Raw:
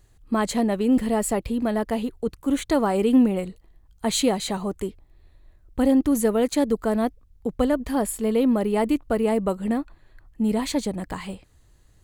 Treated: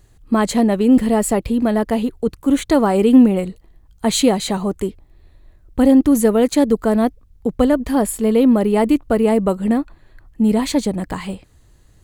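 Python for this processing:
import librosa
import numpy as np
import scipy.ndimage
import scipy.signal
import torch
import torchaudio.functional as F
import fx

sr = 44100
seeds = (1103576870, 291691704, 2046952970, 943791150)

y = fx.peak_eq(x, sr, hz=210.0, db=2.5, octaves=2.5)
y = F.gain(torch.from_numpy(y), 5.0).numpy()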